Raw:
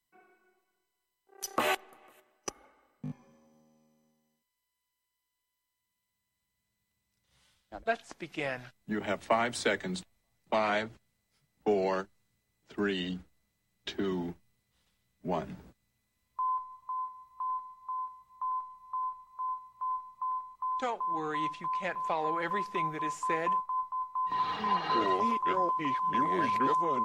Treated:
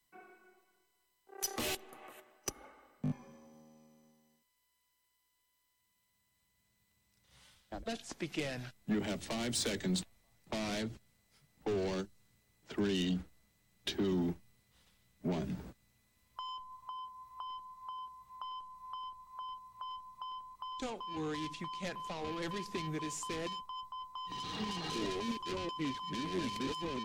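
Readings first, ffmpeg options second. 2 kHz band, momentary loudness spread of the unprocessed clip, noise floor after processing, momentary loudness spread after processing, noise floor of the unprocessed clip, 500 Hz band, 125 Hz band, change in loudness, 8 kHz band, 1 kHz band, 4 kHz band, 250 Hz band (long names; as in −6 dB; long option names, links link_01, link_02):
−8.5 dB, 14 LU, −79 dBFS, 12 LU, −84 dBFS, −6.5 dB, +2.0 dB, −6.5 dB, +3.0 dB, −12.5 dB, +1.0 dB, −0.5 dB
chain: -filter_complex "[0:a]asoftclip=type=tanh:threshold=-31.5dB,acrossover=split=400|3000[link_01][link_02][link_03];[link_02]acompressor=threshold=-50dB:ratio=10[link_04];[link_01][link_04][link_03]amix=inputs=3:normalize=0,volume=5.5dB"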